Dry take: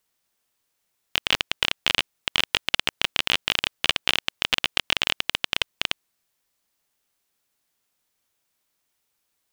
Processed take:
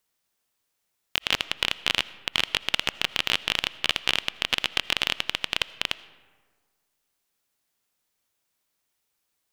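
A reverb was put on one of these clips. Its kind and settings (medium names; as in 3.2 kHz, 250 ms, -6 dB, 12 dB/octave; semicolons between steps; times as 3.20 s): algorithmic reverb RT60 1.6 s, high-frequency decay 0.5×, pre-delay 40 ms, DRR 17.5 dB; trim -2 dB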